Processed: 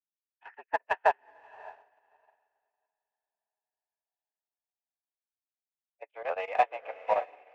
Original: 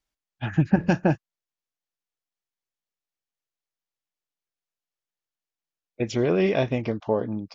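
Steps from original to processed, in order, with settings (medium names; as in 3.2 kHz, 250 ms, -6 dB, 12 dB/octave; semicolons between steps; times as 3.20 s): dynamic bell 800 Hz, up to +3 dB, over -42 dBFS; mistuned SSB +89 Hz 540–2600 Hz; in parallel at -6 dB: saturation -28.5 dBFS, distortion -7 dB; on the sum: square tremolo 8.8 Hz, depth 65%, duty 80%; on a send: echo that smears into a reverb 610 ms, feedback 45%, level -5.5 dB; on the sum: upward expansion 2.5:1, over -49 dBFS; trim +3 dB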